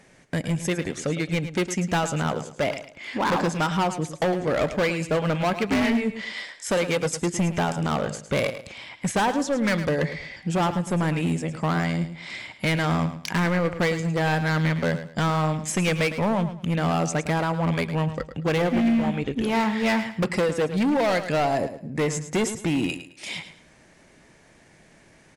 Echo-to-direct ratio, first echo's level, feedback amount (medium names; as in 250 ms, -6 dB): -11.0 dB, -11.5 dB, 27%